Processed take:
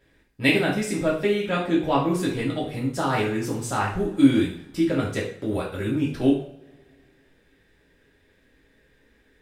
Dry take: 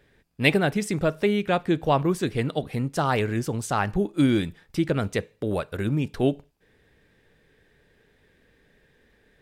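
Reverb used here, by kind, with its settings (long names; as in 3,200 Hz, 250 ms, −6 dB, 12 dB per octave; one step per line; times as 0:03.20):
coupled-rooms reverb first 0.45 s, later 2.2 s, from −26 dB, DRR −5 dB
level −5.5 dB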